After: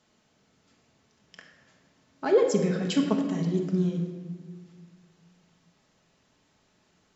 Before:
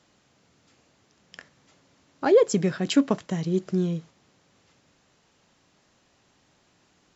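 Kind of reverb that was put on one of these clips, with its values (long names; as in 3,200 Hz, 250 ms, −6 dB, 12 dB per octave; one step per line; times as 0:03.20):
rectangular room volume 1,500 cubic metres, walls mixed, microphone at 1.5 metres
level −5.5 dB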